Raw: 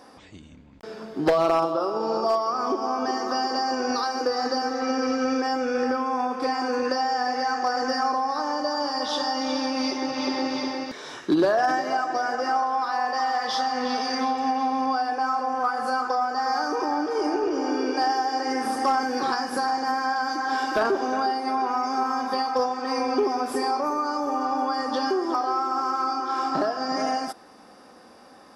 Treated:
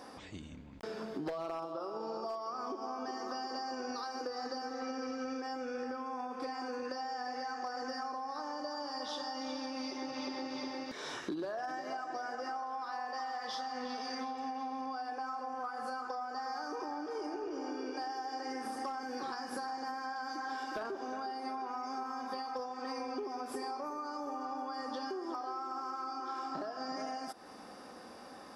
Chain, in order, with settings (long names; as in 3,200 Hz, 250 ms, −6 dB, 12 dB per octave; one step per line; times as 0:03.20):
downward compressor, threshold −37 dBFS, peak gain reduction 18.5 dB
level −1 dB